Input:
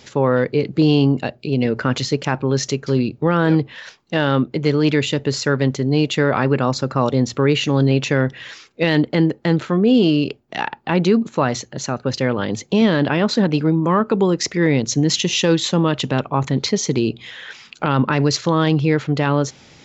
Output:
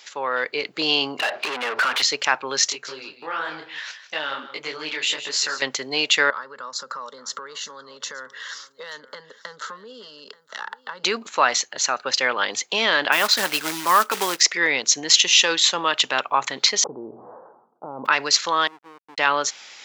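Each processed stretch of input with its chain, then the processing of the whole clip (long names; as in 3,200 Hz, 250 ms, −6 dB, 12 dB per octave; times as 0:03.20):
0:01.19–0:02.02: low-pass filter 4,700 Hz + downward compressor 12 to 1, threshold −29 dBFS + mid-hump overdrive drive 36 dB, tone 1,500 Hz, clips at −14.5 dBFS
0:02.69–0:05.62: downward compressor 3 to 1, threshold −19 dBFS + single-tap delay 157 ms −13 dB + micro pitch shift up and down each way 53 cents
0:06.30–0:11.04: downward compressor 12 to 1, threshold −25 dBFS + phaser with its sweep stopped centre 490 Hz, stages 8 + single-tap delay 881 ms −18 dB
0:13.12–0:14.41: notch filter 490 Hz, Q 7.2 + floating-point word with a short mantissa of 2 bits + one half of a high-frequency compander decoder only
0:16.82–0:18.05: spectral envelope flattened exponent 0.6 + Gaussian smoothing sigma 14 samples + level that may fall only so fast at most 53 dB per second
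0:18.67–0:19.18: downward compressor 12 to 1, threshold −20 dBFS + flat-topped band-pass 290 Hz, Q 1.6 + slack as between gear wheels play −25 dBFS
whole clip: high-pass filter 1,100 Hz 12 dB per octave; automatic gain control gain up to 6.5 dB; level +1 dB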